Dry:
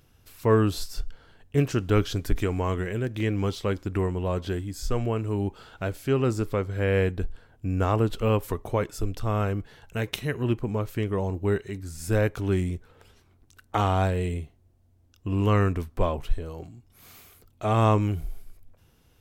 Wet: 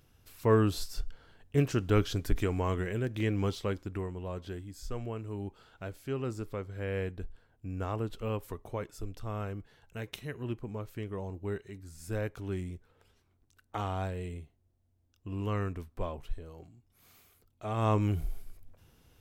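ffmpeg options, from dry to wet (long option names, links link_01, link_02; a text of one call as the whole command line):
ffmpeg -i in.wav -af "volume=6dB,afade=type=out:start_time=3.48:duration=0.57:silence=0.446684,afade=type=in:start_time=17.76:duration=0.46:silence=0.316228" out.wav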